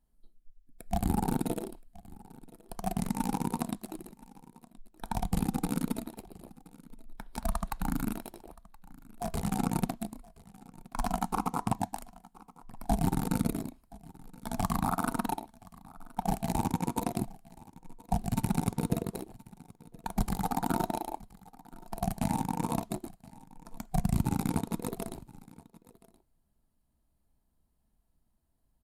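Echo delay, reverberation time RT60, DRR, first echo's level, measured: 1,023 ms, no reverb audible, no reverb audible, −22.0 dB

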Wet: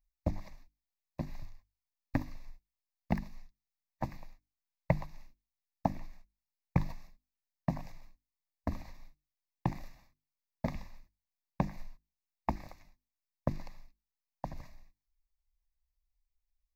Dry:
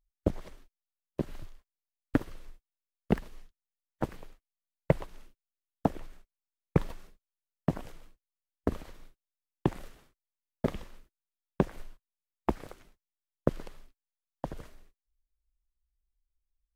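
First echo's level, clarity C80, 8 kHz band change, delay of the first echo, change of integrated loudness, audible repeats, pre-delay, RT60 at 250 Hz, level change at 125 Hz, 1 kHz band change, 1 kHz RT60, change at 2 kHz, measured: no echo audible, no reverb audible, can't be measured, no echo audible, −4.5 dB, no echo audible, no reverb audible, no reverb audible, −2.0 dB, −1.0 dB, no reverb audible, −3.0 dB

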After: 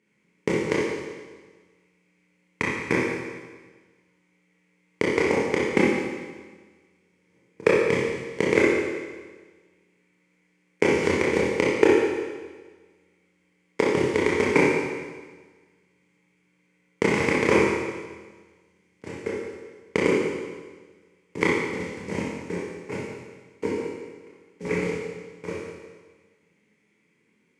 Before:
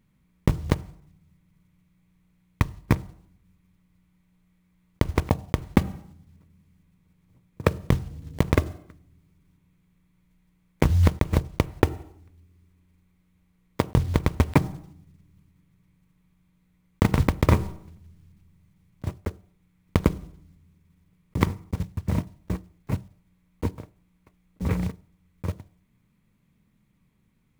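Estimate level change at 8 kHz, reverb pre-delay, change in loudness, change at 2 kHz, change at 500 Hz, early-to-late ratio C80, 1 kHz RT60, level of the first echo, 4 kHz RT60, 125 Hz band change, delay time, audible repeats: +4.5 dB, 24 ms, +2.0 dB, +10.5 dB, +9.5 dB, 1.5 dB, 1.4 s, no echo audible, 1.4 s, −11.0 dB, no echo audible, no echo audible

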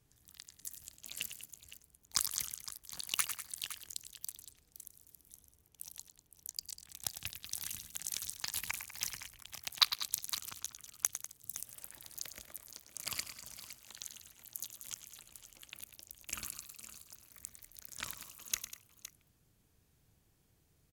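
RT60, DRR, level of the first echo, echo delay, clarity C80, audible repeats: no reverb audible, no reverb audible, −11.0 dB, 103 ms, no reverb audible, 3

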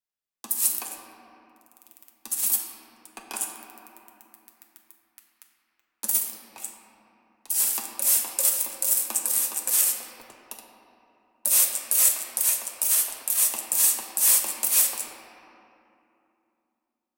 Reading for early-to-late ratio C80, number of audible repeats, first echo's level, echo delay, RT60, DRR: 4.0 dB, no echo audible, no echo audible, no echo audible, 2.8 s, −1.0 dB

